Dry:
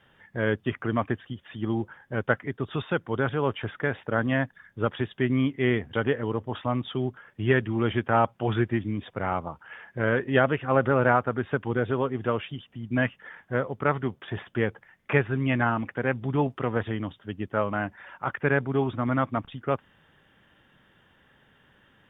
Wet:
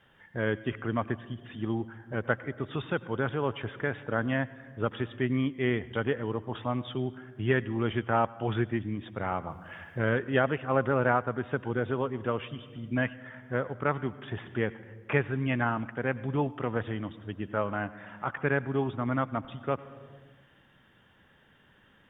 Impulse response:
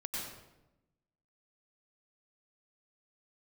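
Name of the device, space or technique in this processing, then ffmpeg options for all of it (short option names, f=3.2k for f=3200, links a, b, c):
compressed reverb return: -filter_complex "[0:a]asplit=2[a][b];[1:a]atrim=start_sample=2205[c];[b][c]afir=irnorm=-1:irlink=0,acompressor=threshold=-33dB:ratio=10,volume=-5.5dB[d];[a][d]amix=inputs=2:normalize=0,asettb=1/sr,asplit=3[e][f][g];[e]atrim=end=9.494[h];[f]atrim=start=9.49:end=10.18,asetpts=PTS-STARTPTS,afade=t=in:d=0.004:c=qsin,afade=t=out:st=0.686:d=0.004:c=qsin,bass=f=250:g=3,treble=f=4k:g=9[i];[g]atrim=start=10.176[j];[h][i]acrossfade=d=0.004:c1=hsin:c2=qsin[k];[k][j]acrossfade=d=0.004:c1=qsin:c2=hsin,volume=-4.5dB"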